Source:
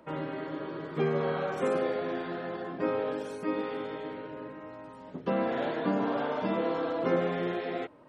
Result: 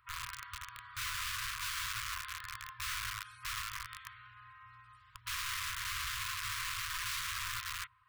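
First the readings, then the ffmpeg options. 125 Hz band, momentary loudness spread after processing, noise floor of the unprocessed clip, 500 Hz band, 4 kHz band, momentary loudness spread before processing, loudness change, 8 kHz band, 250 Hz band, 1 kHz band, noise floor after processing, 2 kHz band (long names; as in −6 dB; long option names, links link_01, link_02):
−12.0 dB, 16 LU, −48 dBFS, below −40 dB, +8.5 dB, 11 LU, −6.5 dB, can't be measured, below −40 dB, −8.0 dB, −62 dBFS, +1.5 dB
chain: -af "equalizer=frequency=6400:width_type=o:width=0.47:gain=-12.5,aeval=exprs='(mod(28.2*val(0)+1,2)-1)/28.2':channel_layout=same,afftfilt=real='re*(1-between(b*sr/4096,120,970))':imag='im*(1-between(b*sr/4096,120,970))':win_size=4096:overlap=0.75,volume=-3.5dB"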